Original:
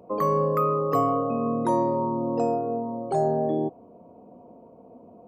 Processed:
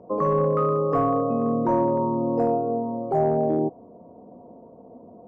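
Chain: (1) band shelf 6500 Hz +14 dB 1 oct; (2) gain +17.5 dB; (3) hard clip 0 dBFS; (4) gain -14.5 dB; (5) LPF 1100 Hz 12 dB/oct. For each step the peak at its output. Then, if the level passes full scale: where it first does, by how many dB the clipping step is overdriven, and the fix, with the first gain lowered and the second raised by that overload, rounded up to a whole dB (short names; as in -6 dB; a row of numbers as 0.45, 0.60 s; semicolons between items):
-10.5, +7.0, 0.0, -14.5, -14.0 dBFS; step 2, 7.0 dB; step 2 +10.5 dB, step 4 -7.5 dB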